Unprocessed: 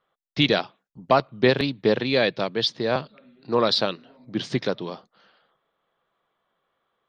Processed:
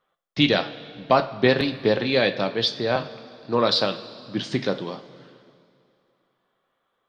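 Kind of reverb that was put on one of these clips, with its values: two-slope reverb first 0.32 s, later 2.5 s, from -15 dB, DRR 6.5 dB

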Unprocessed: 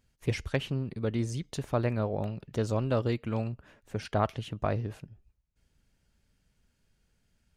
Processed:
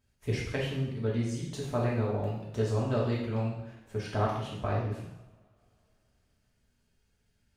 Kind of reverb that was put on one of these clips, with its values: two-slope reverb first 0.81 s, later 3.2 s, from -27 dB, DRR -5 dB; trim -6.5 dB

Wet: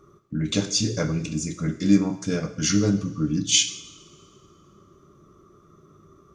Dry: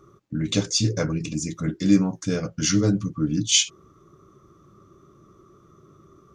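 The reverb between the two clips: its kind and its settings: two-slope reverb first 0.68 s, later 2.2 s, from -17 dB, DRR 7.5 dB; trim -1 dB

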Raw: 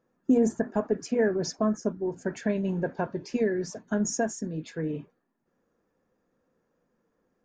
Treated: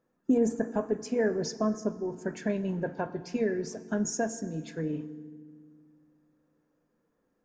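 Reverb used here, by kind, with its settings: FDN reverb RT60 1.8 s, low-frequency decay 1.5×, high-frequency decay 0.75×, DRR 13.5 dB; trim -2.5 dB

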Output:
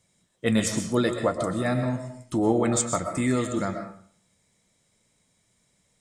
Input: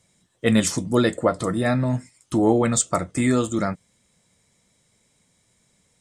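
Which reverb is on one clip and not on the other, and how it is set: algorithmic reverb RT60 0.53 s, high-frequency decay 0.7×, pre-delay 85 ms, DRR 6 dB; trim -4.5 dB

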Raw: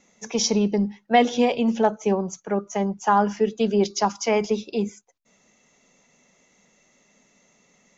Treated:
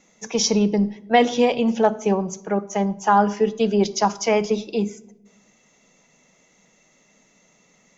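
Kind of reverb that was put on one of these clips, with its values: simulated room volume 2900 m³, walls furnished, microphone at 0.6 m; trim +2 dB

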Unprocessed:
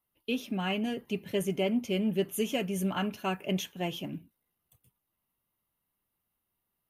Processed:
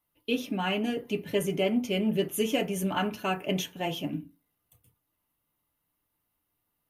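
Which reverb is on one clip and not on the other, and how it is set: FDN reverb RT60 0.3 s, low-frequency decay 1×, high-frequency decay 0.45×, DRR 5.5 dB; trim +2.5 dB

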